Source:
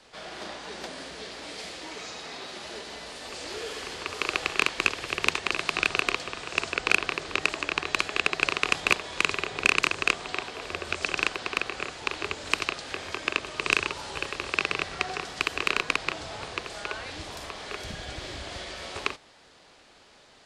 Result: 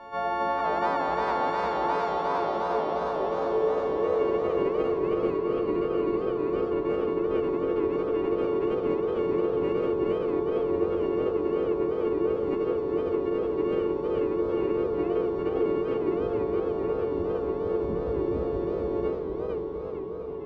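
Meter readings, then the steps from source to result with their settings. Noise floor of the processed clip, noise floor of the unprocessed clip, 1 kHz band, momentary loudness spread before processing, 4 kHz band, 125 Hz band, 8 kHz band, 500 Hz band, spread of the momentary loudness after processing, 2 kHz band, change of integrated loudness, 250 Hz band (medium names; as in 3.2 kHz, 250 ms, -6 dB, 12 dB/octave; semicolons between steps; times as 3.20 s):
-32 dBFS, -56 dBFS, +4.0 dB, 14 LU, under -15 dB, +6.0 dB, under -25 dB, +14.0 dB, 3 LU, -14.5 dB, +1.5 dB, +12.5 dB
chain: partials quantised in pitch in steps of 4 st; in parallel at 0 dB: compression, threshold -31 dBFS, peak gain reduction 18.5 dB; on the sum: saturation -15 dBFS, distortion -11 dB; low-pass sweep 940 Hz -> 380 Hz, 1.45–5.24 s; on a send: echo that smears into a reverb 749 ms, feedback 72%, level -10.5 dB; on the sum: modulated delay 457 ms, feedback 55%, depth 212 cents, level -4 dB; trim +2.5 dB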